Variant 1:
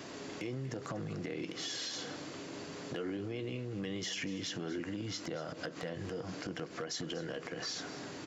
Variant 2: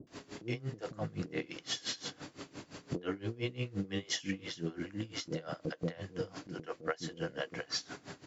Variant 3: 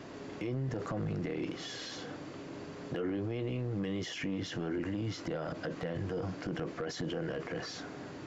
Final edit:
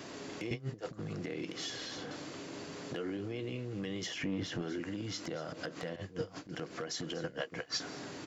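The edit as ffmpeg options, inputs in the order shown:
-filter_complex "[1:a]asplit=3[s0][s1][s2];[2:a]asplit=2[s3][s4];[0:a]asplit=6[s5][s6][s7][s8][s9][s10];[s5]atrim=end=0.512[s11];[s0]atrim=start=0.508:end=0.992[s12];[s6]atrim=start=0.988:end=1.702[s13];[s3]atrim=start=1.698:end=2.112[s14];[s7]atrim=start=2.108:end=4.072[s15];[s4]atrim=start=4.068:end=4.622[s16];[s8]atrim=start=4.618:end=5.962[s17];[s1]atrim=start=5.958:end=6.552[s18];[s9]atrim=start=6.548:end=7.242[s19];[s2]atrim=start=7.238:end=7.802[s20];[s10]atrim=start=7.798[s21];[s11][s12]acrossfade=d=0.004:c1=hsin:c2=hsin[s22];[s22][s13]acrossfade=d=0.004:c1=hsin:c2=hsin[s23];[s23][s14]acrossfade=d=0.004:c1=hsin:c2=hsin[s24];[s24][s15]acrossfade=d=0.004:c1=hsin:c2=hsin[s25];[s25][s16]acrossfade=d=0.004:c1=hsin:c2=hsin[s26];[s26][s17]acrossfade=d=0.004:c1=hsin:c2=hsin[s27];[s27][s18]acrossfade=d=0.004:c1=hsin:c2=hsin[s28];[s28][s19]acrossfade=d=0.004:c1=hsin:c2=hsin[s29];[s29][s20]acrossfade=d=0.004:c1=hsin:c2=hsin[s30];[s30][s21]acrossfade=d=0.004:c1=hsin:c2=hsin"

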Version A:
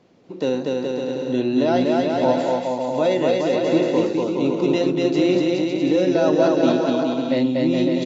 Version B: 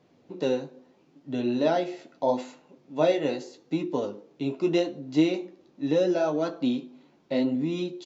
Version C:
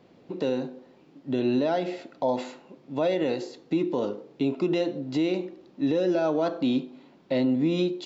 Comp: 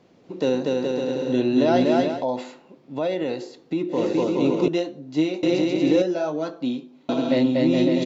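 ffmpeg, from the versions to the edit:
-filter_complex "[1:a]asplit=2[s0][s1];[0:a]asplit=4[s2][s3][s4][s5];[s2]atrim=end=2.26[s6];[2:a]atrim=start=2.02:end=4.12[s7];[s3]atrim=start=3.88:end=4.682[s8];[s0]atrim=start=4.678:end=5.432[s9];[s4]atrim=start=5.428:end=6.022[s10];[s1]atrim=start=6.018:end=7.092[s11];[s5]atrim=start=7.088[s12];[s6][s7]acrossfade=d=0.24:c1=tri:c2=tri[s13];[s13][s8]acrossfade=d=0.24:c1=tri:c2=tri[s14];[s14][s9]acrossfade=d=0.004:c1=hsin:c2=hsin[s15];[s15][s10]acrossfade=d=0.004:c1=hsin:c2=hsin[s16];[s16][s11]acrossfade=d=0.004:c1=hsin:c2=hsin[s17];[s17][s12]acrossfade=d=0.004:c1=hsin:c2=hsin"

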